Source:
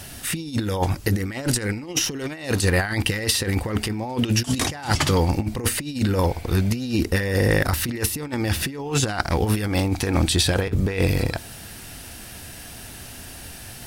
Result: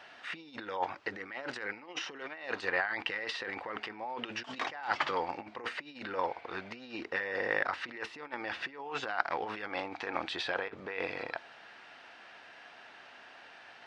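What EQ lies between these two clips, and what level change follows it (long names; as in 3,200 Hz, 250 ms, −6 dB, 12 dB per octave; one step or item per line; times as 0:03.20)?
high-pass filter 970 Hz 12 dB per octave
high-frequency loss of the air 66 metres
head-to-tape spacing loss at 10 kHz 40 dB
+2.0 dB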